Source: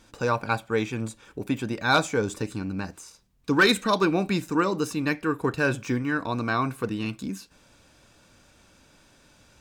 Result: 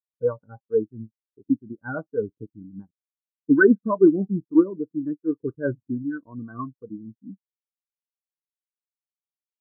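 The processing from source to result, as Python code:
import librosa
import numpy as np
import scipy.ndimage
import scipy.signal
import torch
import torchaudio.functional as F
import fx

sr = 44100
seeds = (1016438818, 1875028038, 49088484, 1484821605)

y = scipy.signal.sosfilt(scipy.signal.butter(4, 1600.0, 'lowpass', fs=sr, output='sos'), x)
y = np.sign(y) * np.maximum(np.abs(y) - 10.0 ** (-45.0 / 20.0), 0.0)
y = fx.rotary(y, sr, hz=6.3)
y = fx.spectral_expand(y, sr, expansion=2.5)
y = y * librosa.db_to_amplitude(6.5)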